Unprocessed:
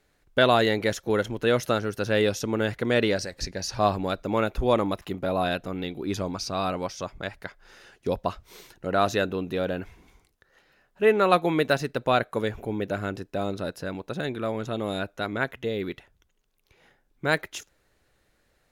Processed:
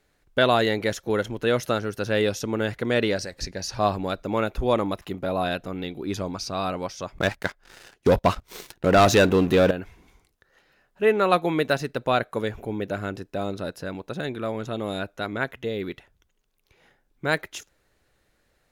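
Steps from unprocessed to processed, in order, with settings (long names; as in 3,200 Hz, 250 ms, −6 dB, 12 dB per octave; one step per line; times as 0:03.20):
0:07.18–0:09.71: leveller curve on the samples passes 3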